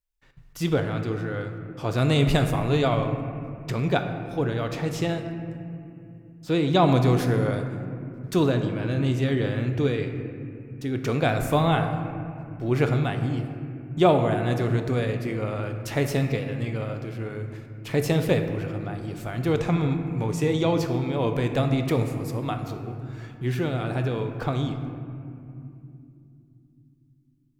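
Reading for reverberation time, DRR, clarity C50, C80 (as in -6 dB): 2.8 s, 5.5 dB, 7.0 dB, 8.0 dB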